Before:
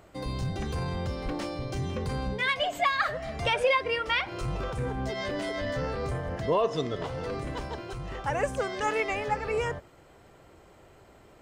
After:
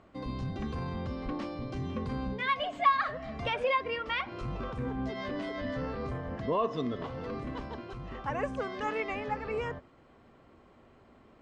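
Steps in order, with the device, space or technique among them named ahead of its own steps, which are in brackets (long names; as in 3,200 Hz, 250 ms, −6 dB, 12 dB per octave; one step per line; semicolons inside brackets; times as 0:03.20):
inside a cardboard box (low-pass filter 4,100 Hz 12 dB per octave; hollow resonant body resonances 240/1,100 Hz, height 11 dB, ringing for 60 ms)
level −5.5 dB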